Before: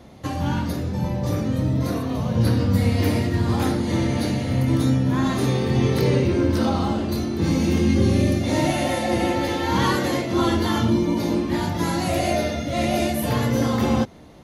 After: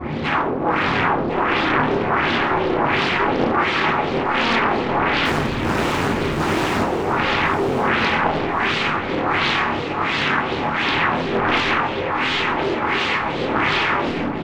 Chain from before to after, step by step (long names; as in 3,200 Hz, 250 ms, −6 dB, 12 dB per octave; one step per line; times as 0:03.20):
in parallel at −1 dB: speech leveller within 3 dB 2 s
on the sum: brickwall limiter −11.5 dBFS, peak gain reduction 10 dB
wave folding −29 dBFS
multi-voice chorus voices 2, 0.26 Hz, delay 26 ms, depth 3.4 ms
auto-filter low-pass sine 1.4 Hz 500–3,300 Hz
0:05.25–0:06.82: comparator with hysteresis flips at −34.5 dBFS
repeating echo 1,054 ms, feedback 27%, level −10 dB
convolution reverb RT60 0.45 s, pre-delay 3 ms, DRR −10.5 dB
highs frequency-modulated by the lows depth 0.7 ms